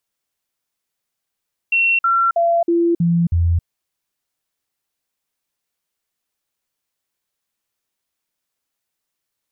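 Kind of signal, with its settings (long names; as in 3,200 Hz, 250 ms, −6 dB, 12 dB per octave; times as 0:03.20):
stepped sweep 2,720 Hz down, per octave 1, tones 6, 0.27 s, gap 0.05 s −12.5 dBFS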